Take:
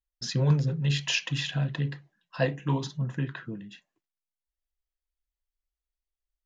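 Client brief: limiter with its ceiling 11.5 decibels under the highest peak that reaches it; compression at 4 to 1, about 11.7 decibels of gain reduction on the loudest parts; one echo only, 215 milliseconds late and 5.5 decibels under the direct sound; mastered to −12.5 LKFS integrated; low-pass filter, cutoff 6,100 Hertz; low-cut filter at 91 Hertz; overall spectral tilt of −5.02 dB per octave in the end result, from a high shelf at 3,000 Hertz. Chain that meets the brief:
high-pass filter 91 Hz
low-pass filter 6,100 Hz
high-shelf EQ 3,000 Hz −3.5 dB
downward compressor 4 to 1, threshold −32 dBFS
brickwall limiter −31.5 dBFS
single-tap delay 215 ms −5.5 dB
level +27.5 dB

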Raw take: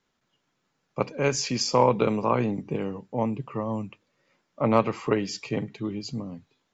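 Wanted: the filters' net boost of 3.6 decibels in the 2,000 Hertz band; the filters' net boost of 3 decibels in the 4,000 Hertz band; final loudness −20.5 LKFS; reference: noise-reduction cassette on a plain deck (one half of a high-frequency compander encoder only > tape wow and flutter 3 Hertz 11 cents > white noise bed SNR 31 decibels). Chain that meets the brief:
parametric band 2,000 Hz +3.5 dB
parametric band 4,000 Hz +3.5 dB
one half of a high-frequency compander encoder only
tape wow and flutter 3 Hz 11 cents
white noise bed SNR 31 dB
level +5.5 dB

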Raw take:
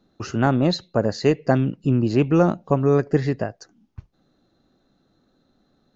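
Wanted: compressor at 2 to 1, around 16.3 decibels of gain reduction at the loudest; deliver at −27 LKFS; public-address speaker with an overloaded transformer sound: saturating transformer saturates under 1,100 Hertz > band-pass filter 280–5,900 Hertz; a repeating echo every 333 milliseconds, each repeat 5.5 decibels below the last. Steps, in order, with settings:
downward compressor 2 to 1, threshold −44 dBFS
repeating echo 333 ms, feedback 53%, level −5.5 dB
saturating transformer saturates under 1,100 Hz
band-pass filter 280–5,900 Hz
level +14.5 dB

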